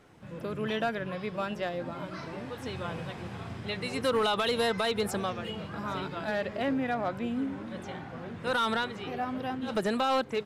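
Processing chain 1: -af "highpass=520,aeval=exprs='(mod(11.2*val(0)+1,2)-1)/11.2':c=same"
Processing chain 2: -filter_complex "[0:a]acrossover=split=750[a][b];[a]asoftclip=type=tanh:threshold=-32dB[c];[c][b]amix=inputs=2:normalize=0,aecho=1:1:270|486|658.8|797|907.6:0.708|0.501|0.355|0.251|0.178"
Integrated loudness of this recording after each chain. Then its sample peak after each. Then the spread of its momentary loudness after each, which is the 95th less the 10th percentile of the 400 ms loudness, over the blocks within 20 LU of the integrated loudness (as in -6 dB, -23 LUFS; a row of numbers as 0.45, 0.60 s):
-34.0, -31.0 LUFS; -21.0, -14.5 dBFS; 15, 9 LU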